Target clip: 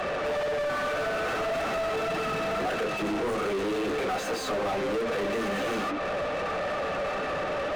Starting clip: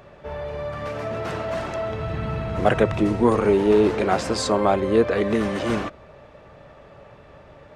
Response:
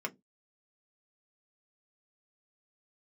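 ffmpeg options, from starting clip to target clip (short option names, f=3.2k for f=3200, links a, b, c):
-filter_complex "[0:a]flanger=delay=3.5:depth=8.1:regen=-22:speed=1.8:shape=triangular[a];[1:a]atrim=start_sample=2205,asetrate=52920,aresample=44100[b];[a][b]afir=irnorm=-1:irlink=0,asettb=1/sr,asplit=3[c][d][e];[c]atrim=end=0.674[f];[d]atrim=start=0.67:end=1.37,asetpts=PTS-STARTPTS,afade=t=in:d=0.004:c=qsin,afade=t=out:st=0.696:d=0.004:c=qsin,aeval=exprs='val(0)+0.0112*sin(2*PI*1500*n/s)':c=same[g];[e]atrim=start=1.366[h];[f][g]acrossfade=d=0.004:c1=hsin:c2=qsin[i];[i][h]acrossfade=d=0.004:c1=qsin:c2=hsin,acrossover=split=4400[j][k];[j]acompressor=threshold=-36dB:ratio=6[l];[l][k]amix=inputs=2:normalize=0,asplit=2[m][n];[n]highpass=f=720:p=1,volume=38dB,asoftclip=type=tanh:threshold=-25.5dB[o];[m][o]amix=inputs=2:normalize=0,lowpass=f=1.8k:p=1,volume=-6dB,volume=3.5dB"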